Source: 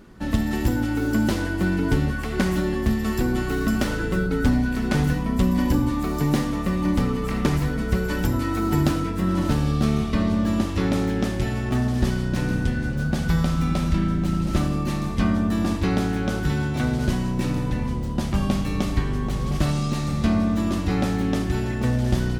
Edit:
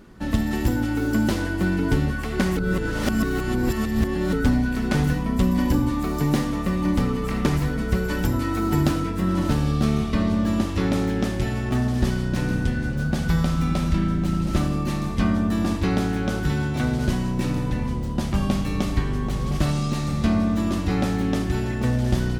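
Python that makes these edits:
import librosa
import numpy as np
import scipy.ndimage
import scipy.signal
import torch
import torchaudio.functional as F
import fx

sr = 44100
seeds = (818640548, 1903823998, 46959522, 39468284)

y = fx.edit(x, sr, fx.reverse_span(start_s=2.57, length_s=1.76), tone=tone)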